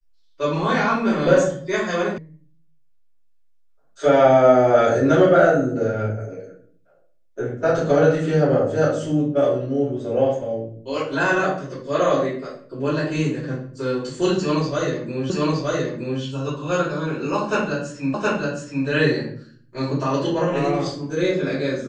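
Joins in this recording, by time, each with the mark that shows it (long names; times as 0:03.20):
0:02.18: cut off before it has died away
0:15.30: the same again, the last 0.92 s
0:18.14: the same again, the last 0.72 s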